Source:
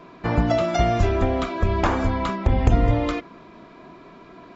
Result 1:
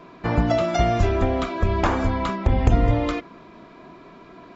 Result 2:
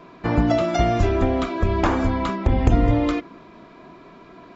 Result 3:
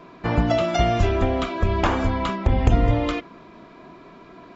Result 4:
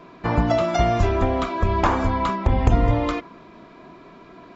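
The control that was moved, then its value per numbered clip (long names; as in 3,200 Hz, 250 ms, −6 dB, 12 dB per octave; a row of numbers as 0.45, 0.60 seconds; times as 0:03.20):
dynamic equaliser, frequency: 7,900, 300, 3,000, 1,000 Hertz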